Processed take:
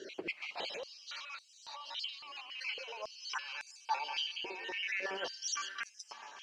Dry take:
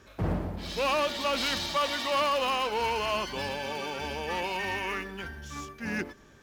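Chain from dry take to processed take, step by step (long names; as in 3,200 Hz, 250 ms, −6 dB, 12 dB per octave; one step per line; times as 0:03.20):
time-frequency cells dropped at random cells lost 38%
flat-topped bell 4,000 Hz +11.5 dB
notch filter 3,500 Hz, Q 7.6
compressor whose output falls as the input rises −39 dBFS, ratio −1
on a send: bucket-brigade delay 194 ms, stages 4,096, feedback 65%, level −14 dB
on the sum: bit-depth reduction 10 bits, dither none
high-frequency loss of the air 93 metres
high-pass on a step sequencer 3.6 Hz 370–7,800 Hz
level −5 dB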